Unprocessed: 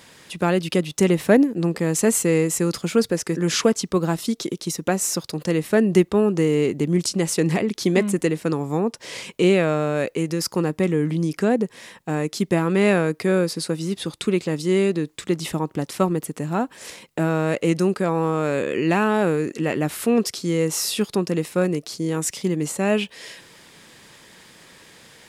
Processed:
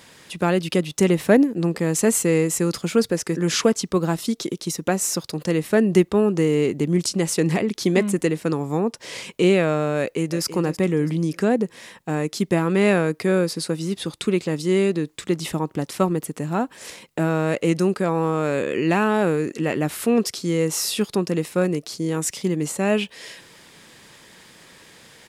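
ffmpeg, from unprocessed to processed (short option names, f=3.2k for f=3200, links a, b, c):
-filter_complex "[0:a]asplit=2[a][b];[b]afade=t=in:st=9.99:d=0.01,afade=t=out:st=10.43:d=0.01,aecho=0:1:330|660|990|1320:0.251189|0.100475|0.0401902|0.0160761[c];[a][c]amix=inputs=2:normalize=0"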